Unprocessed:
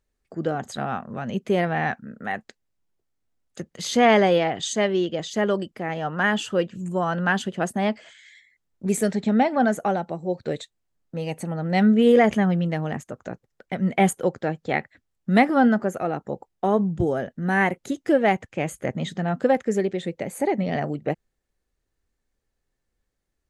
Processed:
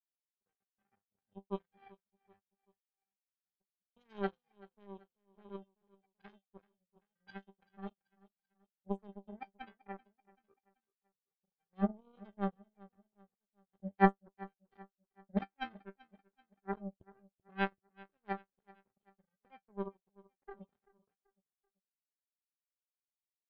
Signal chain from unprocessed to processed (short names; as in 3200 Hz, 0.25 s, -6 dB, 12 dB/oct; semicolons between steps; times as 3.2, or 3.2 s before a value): octave resonator G, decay 0.25 s; power-law curve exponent 3; feedback echo 0.385 s, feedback 42%, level -22 dB; gain +3.5 dB